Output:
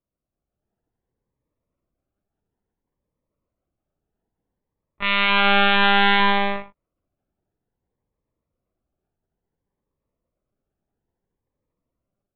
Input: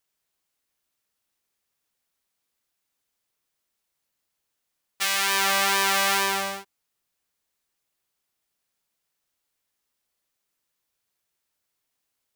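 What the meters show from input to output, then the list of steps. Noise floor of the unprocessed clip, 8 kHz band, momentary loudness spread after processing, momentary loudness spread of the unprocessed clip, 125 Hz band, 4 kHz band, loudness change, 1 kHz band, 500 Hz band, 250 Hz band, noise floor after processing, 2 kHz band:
-80 dBFS, under -40 dB, 11 LU, 9 LU, n/a, +4.0 dB, +4.5 dB, +6.5 dB, +6.5 dB, +14.0 dB, -85 dBFS, +5.5 dB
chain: low-pass opened by the level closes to 650 Hz, open at -17.5 dBFS; HPF 78 Hz 24 dB/oct; low shelf 170 Hz +9 dB; AGC gain up to 7.5 dB; non-linear reverb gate 0.1 s rising, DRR 11 dB; monotone LPC vocoder at 8 kHz 200 Hz; cascading phaser rising 0.59 Hz; gain +4 dB

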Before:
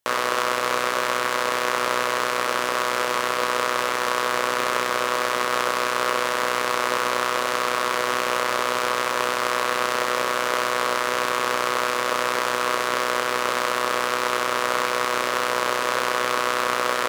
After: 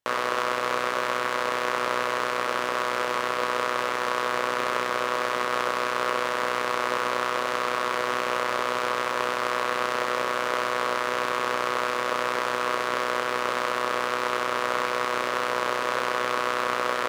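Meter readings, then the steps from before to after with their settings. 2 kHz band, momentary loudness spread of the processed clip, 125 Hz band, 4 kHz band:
-3.5 dB, 1 LU, -2.5 dB, -5.5 dB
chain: high shelf 5100 Hz -9 dB; gain -2.5 dB

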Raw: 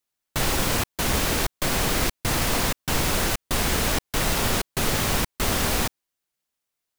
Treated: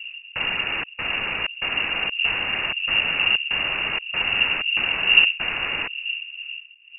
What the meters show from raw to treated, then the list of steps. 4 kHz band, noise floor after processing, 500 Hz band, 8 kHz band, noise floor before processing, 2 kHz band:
+6.5 dB, -47 dBFS, -9.0 dB, under -40 dB, -83 dBFS, +8.5 dB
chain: wind noise 99 Hz -25 dBFS; inverted band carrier 2800 Hz; gain -2.5 dB

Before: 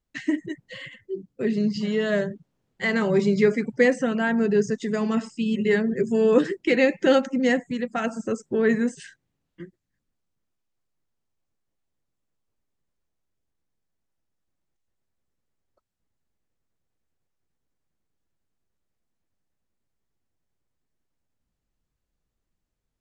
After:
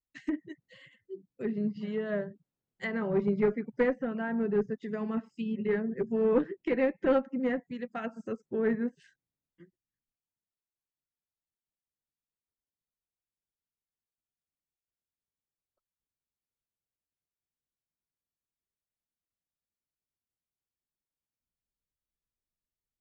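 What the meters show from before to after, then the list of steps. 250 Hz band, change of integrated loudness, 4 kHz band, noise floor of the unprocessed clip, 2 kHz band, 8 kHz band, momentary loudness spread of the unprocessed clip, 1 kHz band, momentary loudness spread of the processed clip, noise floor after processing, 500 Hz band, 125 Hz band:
-8.0 dB, -8.0 dB, under -15 dB, -80 dBFS, -12.0 dB, under -25 dB, 10 LU, -8.0 dB, 11 LU, under -85 dBFS, -7.5 dB, -8.5 dB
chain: one-sided clip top -17 dBFS; treble ducked by the level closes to 1600 Hz, closed at -20 dBFS; upward expander 1.5:1, over -39 dBFS; gain -5 dB

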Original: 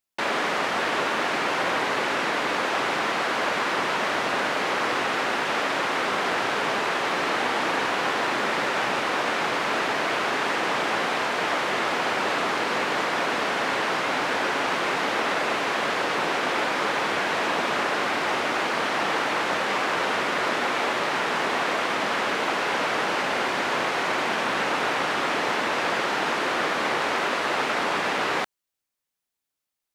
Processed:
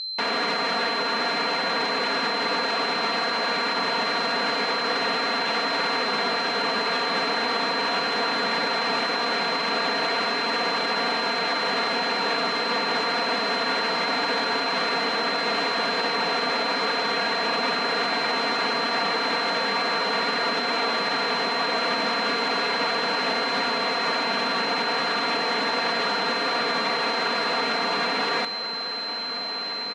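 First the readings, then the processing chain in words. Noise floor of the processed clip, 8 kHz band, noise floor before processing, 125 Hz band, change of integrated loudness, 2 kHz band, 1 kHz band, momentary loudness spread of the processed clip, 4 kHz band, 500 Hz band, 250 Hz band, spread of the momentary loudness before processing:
-30 dBFS, -4.5 dB, -84 dBFS, -1.5 dB, +1.0 dB, -0.5 dB, 0.0 dB, 0 LU, +6.0 dB, 0.0 dB, 0.0 dB, 0 LU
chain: comb 4.3 ms, depth 96%; limiter -16.5 dBFS, peak gain reduction 7.5 dB; on a send: diffused feedback echo 1.544 s, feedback 70%, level -12 dB; on the sum: whine 4100 Hz -27 dBFS; air absorption 58 m

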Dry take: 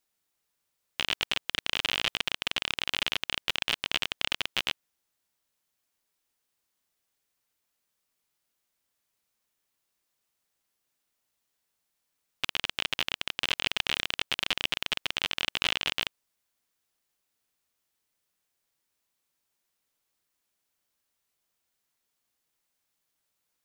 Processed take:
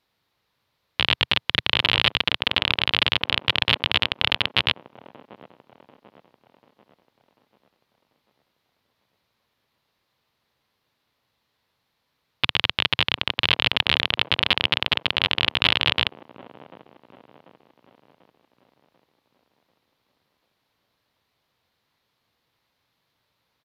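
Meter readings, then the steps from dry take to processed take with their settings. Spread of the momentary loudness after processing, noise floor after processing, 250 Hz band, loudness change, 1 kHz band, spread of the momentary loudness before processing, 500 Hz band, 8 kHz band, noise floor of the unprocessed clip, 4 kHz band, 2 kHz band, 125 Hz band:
4 LU, -75 dBFS, +11.0 dB, +8.5 dB, +9.5 dB, 4 LU, +9.5 dB, n/a, -81 dBFS, +9.0 dB, +8.5 dB, +16.0 dB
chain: bell 80 Hz +12.5 dB 2.4 oct; soft clip -11.5 dBFS, distortion -16 dB; downsampling 32000 Hz; graphic EQ 125/250/500/1000/2000/4000/8000 Hz +7/+5/+8/+10/+6/+12/-11 dB; band-limited delay 0.741 s, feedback 48%, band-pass 400 Hz, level -11 dB; gain +1 dB

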